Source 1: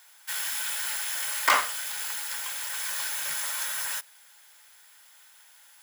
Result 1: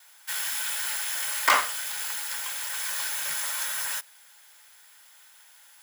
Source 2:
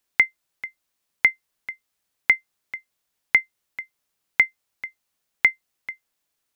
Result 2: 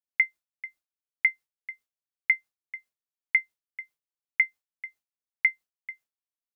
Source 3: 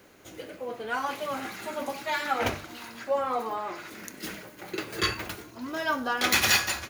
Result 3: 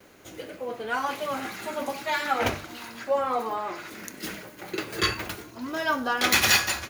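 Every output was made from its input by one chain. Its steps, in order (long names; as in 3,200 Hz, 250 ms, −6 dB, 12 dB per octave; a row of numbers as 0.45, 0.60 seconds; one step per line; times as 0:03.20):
noise gate with hold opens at −48 dBFS
loudness normalisation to −27 LKFS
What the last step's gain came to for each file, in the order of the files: +1.0, −4.5, +2.0 decibels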